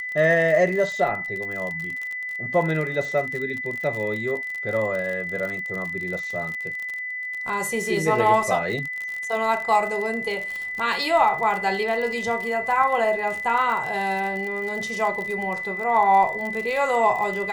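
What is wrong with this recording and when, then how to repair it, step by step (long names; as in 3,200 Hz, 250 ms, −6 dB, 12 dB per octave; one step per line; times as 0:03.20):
surface crackle 49 per second −28 dBFS
whistle 2,000 Hz −28 dBFS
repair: click removal
notch filter 2,000 Hz, Q 30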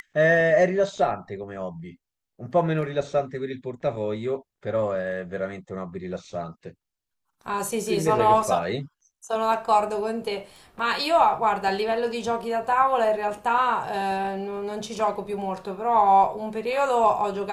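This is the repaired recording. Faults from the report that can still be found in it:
none of them is left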